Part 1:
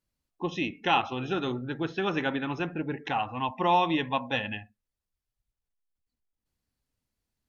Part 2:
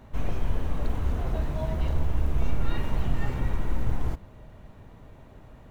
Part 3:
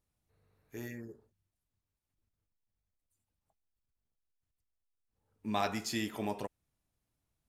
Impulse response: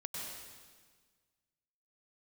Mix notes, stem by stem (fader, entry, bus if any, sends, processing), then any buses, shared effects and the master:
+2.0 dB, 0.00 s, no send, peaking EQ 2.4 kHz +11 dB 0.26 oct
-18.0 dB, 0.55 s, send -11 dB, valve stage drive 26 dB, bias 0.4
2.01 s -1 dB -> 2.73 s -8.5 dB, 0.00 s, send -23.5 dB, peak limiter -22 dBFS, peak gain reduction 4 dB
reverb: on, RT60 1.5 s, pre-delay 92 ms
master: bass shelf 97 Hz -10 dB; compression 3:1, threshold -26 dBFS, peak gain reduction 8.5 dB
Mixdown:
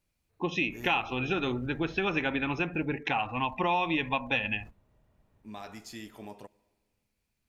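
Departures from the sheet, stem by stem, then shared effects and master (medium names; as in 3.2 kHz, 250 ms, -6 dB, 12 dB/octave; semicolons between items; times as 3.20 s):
stem 2: send off; master: missing bass shelf 97 Hz -10 dB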